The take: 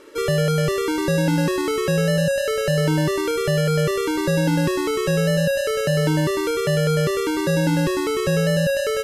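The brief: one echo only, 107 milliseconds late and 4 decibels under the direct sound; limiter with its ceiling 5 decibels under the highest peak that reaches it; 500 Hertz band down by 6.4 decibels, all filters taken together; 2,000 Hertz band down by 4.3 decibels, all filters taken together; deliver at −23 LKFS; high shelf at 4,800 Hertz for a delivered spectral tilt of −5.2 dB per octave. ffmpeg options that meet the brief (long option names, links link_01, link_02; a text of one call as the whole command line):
ffmpeg -i in.wav -af "equalizer=frequency=500:width_type=o:gain=-7.5,equalizer=frequency=2000:width_type=o:gain=-4.5,highshelf=frequency=4800:gain=-3.5,alimiter=limit=-17.5dB:level=0:latency=1,aecho=1:1:107:0.631,volume=2.5dB" out.wav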